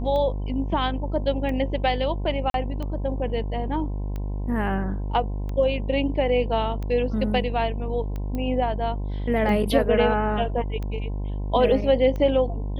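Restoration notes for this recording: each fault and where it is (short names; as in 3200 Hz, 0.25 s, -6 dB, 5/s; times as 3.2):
buzz 50 Hz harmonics 21 -28 dBFS
tick 45 rpm -21 dBFS
2.5–2.54 gap 42 ms
8.35 pop -19 dBFS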